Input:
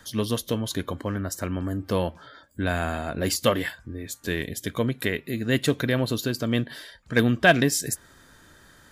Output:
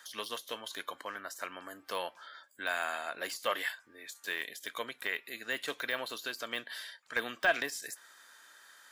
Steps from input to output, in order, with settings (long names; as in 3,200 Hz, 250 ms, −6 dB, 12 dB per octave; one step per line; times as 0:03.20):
high-pass filter 970 Hz 12 dB per octave
de-essing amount 85%
level −1.5 dB